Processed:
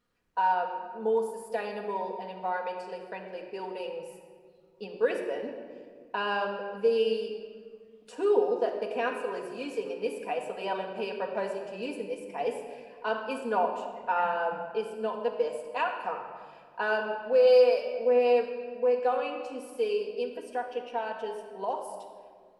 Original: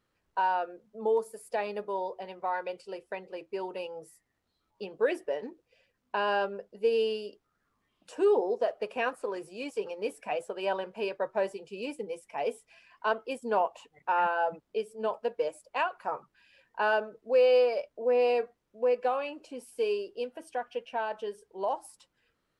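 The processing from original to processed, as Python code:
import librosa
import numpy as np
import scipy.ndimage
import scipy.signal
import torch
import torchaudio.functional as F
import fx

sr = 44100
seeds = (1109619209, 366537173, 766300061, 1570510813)

y = fx.high_shelf(x, sr, hz=3900.0, db=8.0, at=(17.47, 17.97))
y = fx.room_shoebox(y, sr, seeds[0], volume_m3=2800.0, walls='mixed', distance_m=1.8)
y = F.gain(torch.from_numpy(y), -2.0).numpy()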